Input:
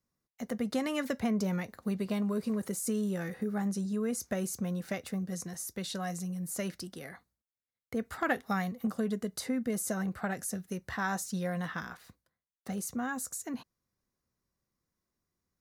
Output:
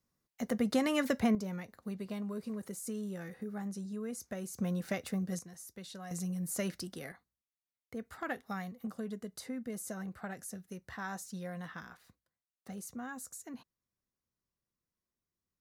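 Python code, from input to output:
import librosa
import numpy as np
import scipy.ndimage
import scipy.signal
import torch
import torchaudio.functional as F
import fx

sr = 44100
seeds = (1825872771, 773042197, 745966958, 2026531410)

y = fx.gain(x, sr, db=fx.steps((0.0, 2.0), (1.35, -7.5), (4.58, 0.0), (5.39, -10.0), (6.11, 0.0), (7.12, -8.0)))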